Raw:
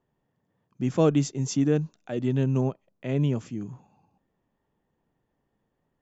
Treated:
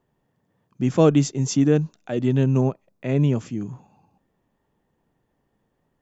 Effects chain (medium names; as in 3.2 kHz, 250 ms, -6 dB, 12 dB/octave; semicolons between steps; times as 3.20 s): 2.56–3.28 s: band-stop 3.1 kHz, Q 8.1; trim +5 dB